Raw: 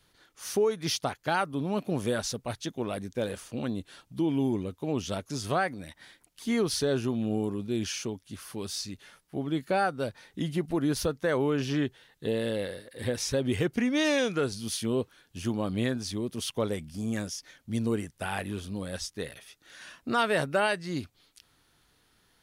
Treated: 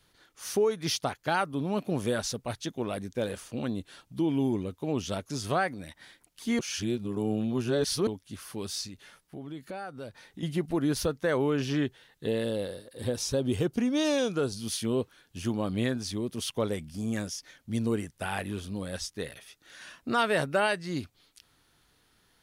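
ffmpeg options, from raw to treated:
ffmpeg -i in.wav -filter_complex "[0:a]asettb=1/sr,asplit=3[link_01][link_02][link_03];[link_01]atrim=end=8.874[link_04];[link_02]atrim=start=8.87:end=10.43,asetpts=PTS-STARTPTS,afade=type=in:duration=0.004:curve=qsin,afade=type=out:start_time=1.556:duration=0.004:curve=qsin,acompressor=threshold=-41dB:ratio=2.5:attack=3.2:release=140:knee=1:detection=peak[link_05];[link_03]atrim=start=10.426[link_06];[link_04][link_05]acrossfade=duration=0.004:curve1=hsin:curve2=qsin[link_07];[link_07][link_06]acrossfade=duration=0.004:curve1=qsin:curve2=hsin,asettb=1/sr,asplit=3[link_08][link_09][link_10];[link_08]atrim=end=12.444[link_11];[link_09]atrim=start=12.44:end=14.57,asetpts=PTS-STARTPTS,afade=type=in:duration=0.004:curve=qsin,afade=type=out:start_time=2.126:duration=0.004:curve=qsin,equalizer=frequency=2000:width=2:gain=-10.5[link_12];[link_10]atrim=start=14.566[link_13];[link_11][link_12]acrossfade=duration=0.004:curve1=hsin:curve2=qsin[link_14];[link_14][link_13]acrossfade=duration=0.004:curve1=qsin:curve2=hsin,asplit=3[link_15][link_16][link_17];[link_15]atrim=end=6.592[link_18];[link_16]atrim=start=6.588:end=8.072,asetpts=PTS-STARTPTS,areverse[link_19];[link_17]atrim=start=8.068[link_20];[link_18][link_19]acrossfade=duration=0.004:curve1=hsin:curve2=hsin[link_21];[link_21][link_20]acrossfade=duration=0.004:curve1=hsin:curve2=hsin" out.wav

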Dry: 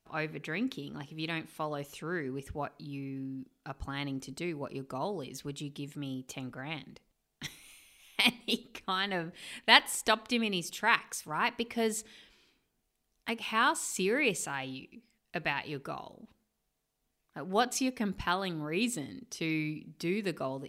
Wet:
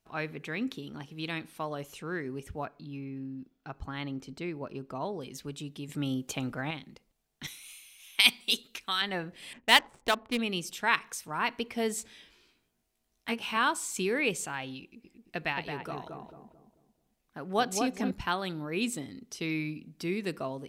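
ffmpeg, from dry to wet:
ffmpeg -i in.wav -filter_complex "[0:a]asettb=1/sr,asplit=3[link_01][link_02][link_03];[link_01]atrim=end=2.654[link_04];[link_02]atrim=start=2.65:end=5.21,asetpts=PTS-STARTPTS,afade=type=in:duration=0.004:curve=qsin,afade=type=out:start_time=2.556:duration=0.004:curve=qsin,equalizer=frequency=10000:width_type=o:width=1.5:gain=-11[link_05];[link_03]atrim=start=5.206[link_06];[link_04][link_05]acrossfade=duration=0.004:curve1=hsin:curve2=qsin[link_07];[link_07][link_06]acrossfade=duration=0.004:curve1=qsin:curve2=hsin,asettb=1/sr,asplit=3[link_08][link_09][link_10];[link_08]atrim=end=5.894[link_11];[link_09]atrim=start=5.89:end=6.71,asetpts=PTS-STARTPTS,afade=type=in:duration=0.004:curve=qsin,afade=type=out:start_time=0.816:duration=0.004:curve=qsin,acontrast=71[link_12];[link_10]atrim=start=6.706[link_13];[link_11][link_12]acrossfade=duration=0.004:curve1=hsin:curve2=qsin[link_14];[link_14][link_13]acrossfade=duration=0.004:curve1=qsin:curve2=hsin,asettb=1/sr,asplit=3[link_15][link_16][link_17];[link_15]atrim=end=7.474[link_18];[link_16]atrim=start=7.47:end=9.02,asetpts=PTS-STARTPTS,afade=type=in:duration=0.004:curve=qsin,afade=type=out:start_time=1.546:duration=0.004:curve=qsin,tiltshelf=frequency=1300:gain=-8[link_19];[link_17]atrim=start=9.016[link_20];[link_18][link_19]acrossfade=duration=0.004:curve1=hsin:curve2=qsin[link_21];[link_21][link_20]acrossfade=duration=0.004:curve1=qsin:curve2=hsin,asettb=1/sr,asplit=3[link_22][link_23][link_24];[link_22]atrim=end=9.534[link_25];[link_23]atrim=start=9.53:end=10.39,asetpts=PTS-STARTPTS,afade=type=in:duration=0.004:curve=qsin,afade=type=out:start_time=0.856:duration=0.004:curve=qsin,adynamicsmooth=sensitivity=5.5:basefreq=700[link_26];[link_24]atrim=start=10.386[link_27];[link_25][link_26]acrossfade=duration=0.004:curve1=hsin:curve2=qsin[link_28];[link_28][link_27]acrossfade=duration=0.004:curve1=qsin:curve2=hsin,asettb=1/sr,asplit=3[link_29][link_30][link_31];[link_29]atrim=end=11.964[link_32];[link_30]atrim=start=11.96:end=13.57,asetpts=PTS-STARTPTS,afade=type=in:duration=0.004:curve=qsin,afade=type=out:start_time=1.606:duration=0.004:curve=qsin,asplit=2[link_33][link_34];[link_34]adelay=17,volume=-4dB[link_35];[link_33][link_35]amix=inputs=2:normalize=0,atrim=end_sample=71001[link_36];[link_31]atrim=start=13.566[link_37];[link_32][link_36]acrossfade=duration=0.004:curve1=hsin:curve2=qsin[link_38];[link_38][link_37]acrossfade=duration=0.004:curve1=qsin:curve2=hsin,asettb=1/sr,asplit=3[link_39][link_40][link_41];[link_39]atrim=end=14.824[link_42];[link_40]atrim=start=14.82:end=18.11,asetpts=PTS-STARTPTS,afade=type=in:duration=0.004:curve=qsin,afade=type=out:start_time=3.286:duration=0.004:curve=qsin,asplit=2[link_43][link_44];[link_44]adelay=221,lowpass=frequency=1000:poles=1,volume=-3dB,asplit=2[link_45][link_46];[link_46]adelay=221,lowpass=frequency=1000:poles=1,volume=0.41,asplit=2[link_47][link_48];[link_48]adelay=221,lowpass=frequency=1000:poles=1,volume=0.41,asplit=2[link_49][link_50];[link_50]adelay=221,lowpass=frequency=1000:poles=1,volume=0.41,asplit=2[link_51][link_52];[link_52]adelay=221,lowpass=frequency=1000:poles=1,volume=0.41[link_53];[link_43][link_45][link_47][link_49][link_51][link_53]amix=inputs=6:normalize=0,atrim=end_sample=145089[link_54];[link_41]atrim=start=18.106[link_55];[link_42][link_54]acrossfade=duration=0.004:curve1=hsin:curve2=qsin[link_56];[link_56][link_55]acrossfade=duration=0.004:curve1=qsin:curve2=hsin" out.wav

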